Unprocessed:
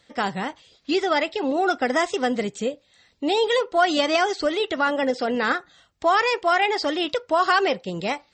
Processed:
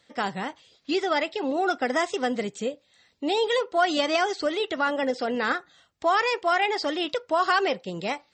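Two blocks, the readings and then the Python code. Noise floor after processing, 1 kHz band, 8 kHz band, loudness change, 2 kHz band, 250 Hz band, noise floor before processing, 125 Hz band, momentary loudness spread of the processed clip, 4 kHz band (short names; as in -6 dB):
-66 dBFS, -3.0 dB, -3.0 dB, -3.0 dB, -3.0 dB, -3.5 dB, -62 dBFS, n/a, 8 LU, -3.0 dB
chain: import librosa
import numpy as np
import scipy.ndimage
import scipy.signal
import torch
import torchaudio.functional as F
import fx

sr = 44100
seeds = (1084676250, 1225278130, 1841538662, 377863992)

y = fx.highpass(x, sr, hz=100.0, slope=6)
y = y * 10.0 ** (-3.0 / 20.0)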